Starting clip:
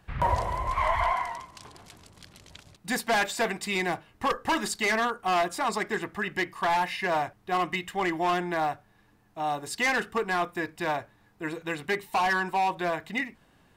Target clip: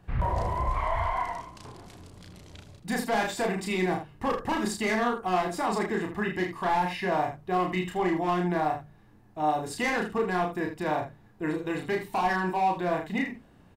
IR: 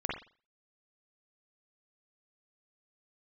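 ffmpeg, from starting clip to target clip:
-af "tiltshelf=f=810:g=5.5,bandreject=f=50:t=h:w=6,bandreject=f=100:t=h:w=6,bandreject=f=150:t=h:w=6,bandreject=f=200:t=h:w=6,bandreject=f=250:t=h:w=6,alimiter=limit=-21.5dB:level=0:latency=1,aecho=1:1:33|79:0.708|0.335"

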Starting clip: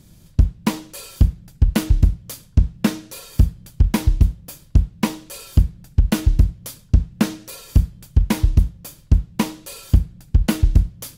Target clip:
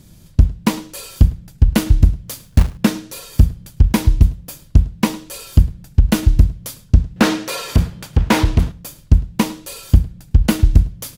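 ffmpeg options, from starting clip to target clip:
-filter_complex "[0:a]asplit=3[a][b][c];[a]afade=t=out:st=2.28:d=0.02[d];[b]acrusher=bits=3:mode=log:mix=0:aa=0.000001,afade=t=in:st=2.28:d=0.02,afade=t=out:st=2.76:d=0.02[e];[c]afade=t=in:st=2.76:d=0.02[f];[d][e][f]amix=inputs=3:normalize=0,asettb=1/sr,asplit=3[g][h][i];[g]atrim=end=7.164[j];[h]atrim=start=7.16:end=8.72,asetpts=PTS-STARTPTS,afade=t=in:d=0.004:c=qsin,afade=t=out:st=1.556:d=0.004:c=qsin,asplit=2[k][l];[l]highpass=f=720:p=1,volume=23dB,asoftclip=type=tanh:threshold=-5dB[m];[k][m]amix=inputs=2:normalize=0,lowpass=f=1.9k:p=1,volume=-6dB[n];[i]atrim=start=8.716[o];[j][n]acrossfade=d=0.004:c1=hsin:c2=qsin[p];[p][o]acrossfade=d=0.004:c1=qsin:c2=hsin,asplit=2[q][r];[r]adelay=105,volume=-21dB,highshelf=f=4k:g=-2.36[s];[q][s]amix=inputs=2:normalize=0,volume=3.5dB"

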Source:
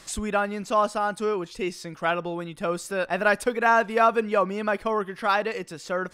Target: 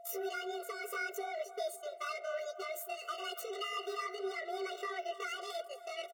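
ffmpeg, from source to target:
-filter_complex "[0:a]agate=range=-33dB:threshold=-35dB:ratio=16:detection=peak,alimiter=limit=-19.5dB:level=0:latency=1:release=64,acompressor=threshold=-32dB:ratio=10,asoftclip=type=tanh:threshold=-36dB,asetrate=76340,aresample=44100,atempo=0.577676,afreqshift=22,aeval=exprs='val(0)+0.002*sin(2*PI*690*n/s)':c=same,flanger=delay=2.9:depth=7.5:regen=-39:speed=1.8:shape=triangular,asplit=2[a][b];[b]adelay=279,lowpass=f=2.1k:p=1,volume=-14.5dB,asplit=2[c][d];[d]adelay=279,lowpass=f=2.1k:p=1,volume=0.5,asplit=2[e][f];[f]adelay=279,lowpass=f=2.1k:p=1,volume=0.5,asplit=2[g][h];[h]adelay=279,lowpass=f=2.1k:p=1,volume=0.5,asplit=2[i][j];[j]adelay=279,lowpass=f=2.1k:p=1,volume=0.5[k];[c][e][g][i][k]amix=inputs=5:normalize=0[l];[a][l]amix=inputs=2:normalize=0,afftfilt=real='re*eq(mod(floor(b*sr/1024/380),2),1)':imag='im*eq(mod(floor(b*sr/1024/380),2),1)':win_size=1024:overlap=0.75,volume=8dB"

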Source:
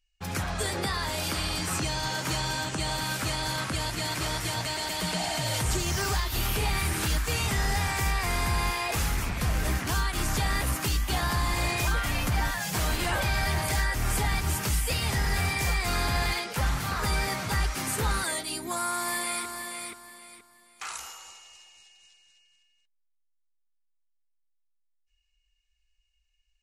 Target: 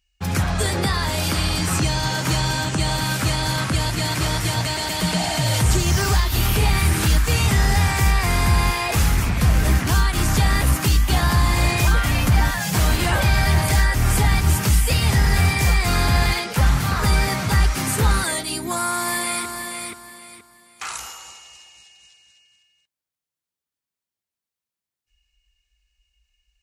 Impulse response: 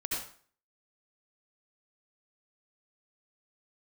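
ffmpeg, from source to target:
-af "highpass=46,bass=f=250:g=6,treble=f=4k:g=0,volume=6.5dB"

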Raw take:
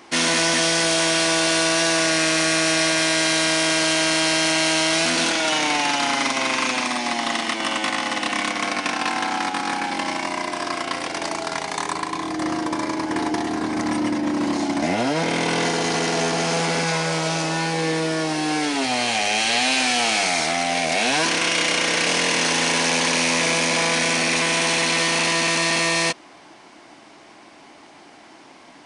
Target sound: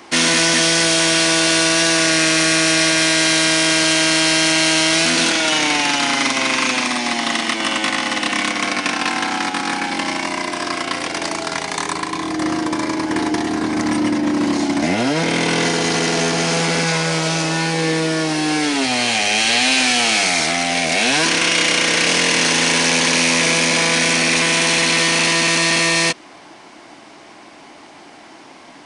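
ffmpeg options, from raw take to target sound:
-filter_complex "[0:a]acrossover=split=610|1000[a][b][c];[b]acompressor=threshold=-42dB:ratio=6[d];[a][d][c]amix=inputs=3:normalize=0,volume=5dB"

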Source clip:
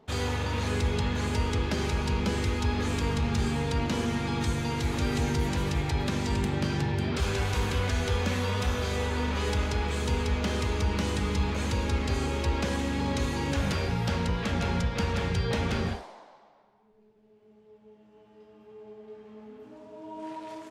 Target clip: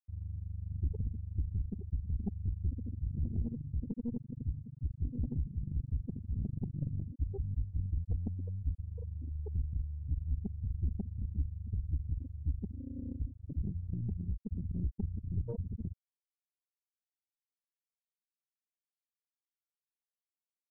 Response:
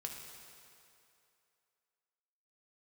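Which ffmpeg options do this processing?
-af "afftfilt=real='re*gte(hypot(re,im),0.282)':imag='im*gte(hypot(re,im),0.282)':win_size=1024:overlap=0.75,aeval=exprs='0.112*(cos(1*acos(clip(val(0)/0.112,-1,1)))-cos(1*PI/2))+0.0158*(cos(4*acos(clip(val(0)/0.112,-1,1)))-cos(4*PI/2))+0.00158*(cos(5*acos(clip(val(0)/0.112,-1,1)))-cos(5*PI/2))':c=same,volume=-5dB"

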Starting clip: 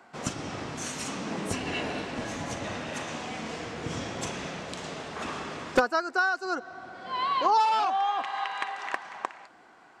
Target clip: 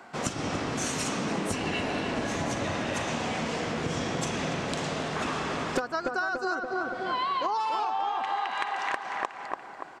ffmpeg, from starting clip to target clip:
-filter_complex "[0:a]asplit=2[a][b];[b]adelay=287,lowpass=f=1.6k:p=1,volume=-5dB,asplit=2[c][d];[d]adelay=287,lowpass=f=1.6k:p=1,volume=0.52,asplit=2[e][f];[f]adelay=287,lowpass=f=1.6k:p=1,volume=0.52,asplit=2[g][h];[h]adelay=287,lowpass=f=1.6k:p=1,volume=0.52,asplit=2[i][j];[j]adelay=287,lowpass=f=1.6k:p=1,volume=0.52,asplit=2[k][l];[l]adelay=287,lowpass=f=1.6k:p=1,volume=0.52,asplit=2[m][n];[n]adelay=287,lowpass=f=1.6k:p=1,volume=0.52[o];[a][c][e][g][i][k][m][o]amix=inputs=8:normalize=0,acompressor=threshold=-32dB:ratio=10,volume=6dB"

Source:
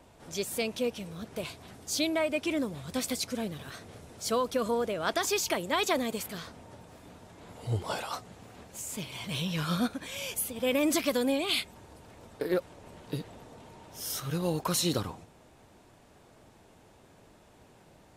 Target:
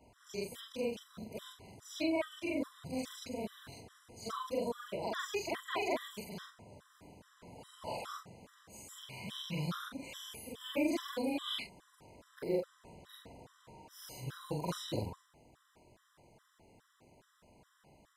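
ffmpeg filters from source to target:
-filter_complex "[0:a]afftfilt=real='re':imag='-im':win_size=4096:overlap=0.75,acrossover=split=4100[a][b];[b]acompressor=threshold=-48dB:ratio=4:attack=1:release=60[c];[a][c]amix=inputs=2:normalize=0,afftfilt=real='re*gt(sin(2*PI*2.4*pts/sr)*(1-2*mod(floor(b*sr/1024/1000),2)),0)':imag='im*gt(sin(2*PI*2.4*pts/sr)*(1-2*mod(floor(b*sr/1024/1000),2)),0)':win_size=1024:overlap=0.75"

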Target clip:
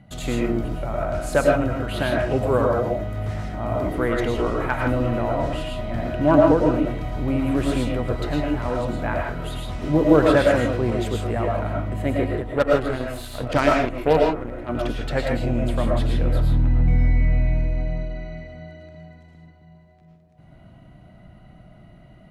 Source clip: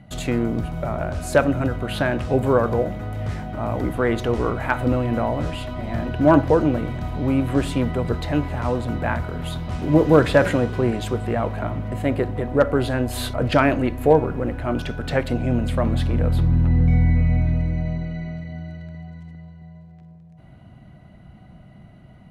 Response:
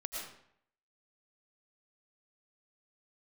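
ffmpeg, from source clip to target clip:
-filter_complex "[0:a]asettb=1/sr,asplit=3[a][b][c];[a]atrim=end=12.424[d];[b]atrim=start=12.42:end=14.69,asetpts=PTS-STARTPTS,afade=t=in:d=0.004:c=qsin,afade=t=out:st=2.266:d=0.004:c=qsin,aeval=exprs='0.631*(cos(1*acos(clip(val(0)/0.631,-1,1)))-cos(1*PI/2))+0.0631*(cos(7*acos(clip(val(0)/0.631,-1,1)))-cos(7*PI/2))':c=same[e];[c]atrim=start=14.686[f];[d][e]acrossfade=d=0.004:c1=hsin:c2=qsin[g];[g][f]acrossfade=d=0.004:c1=qsin:c2=hsin[h];[1:a]atrim=start_sample=2205,afade=t=out:st=0.22:d=0.01,atrim=end_sample=10143[i];[h][i]afir=irnorm=-1:irlink=0"

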